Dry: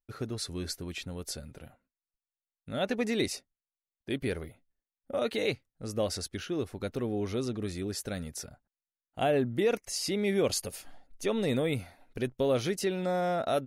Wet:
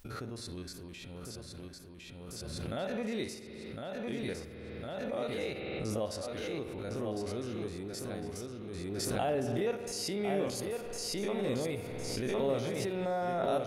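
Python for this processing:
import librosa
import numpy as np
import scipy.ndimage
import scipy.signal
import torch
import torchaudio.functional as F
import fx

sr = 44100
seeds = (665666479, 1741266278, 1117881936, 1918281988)

p1 = fx.spec_steps(x, sr, hold_ms=50)
p2 = fx.dynamic_eq(p1, sr, hz=860.0, q=0.9, threshold_db=-46.0, ratio=4.0, max_db=5)
p3 = p2 + fx.echo_feedback(p2, sr, ms=1057, feedback_pct=30, wet_db=-5, dry=0)
p4 = fx.rev_spring(p3, sr, rt60_s=1.4, pass_ms=(51,), chirp_ms=30, drr_db=9.0)
p5 = fx.pre_swell(p4, sr, db_per_s=20.0)
y = p5 * 10.0 ** (-7.5 / 20.0)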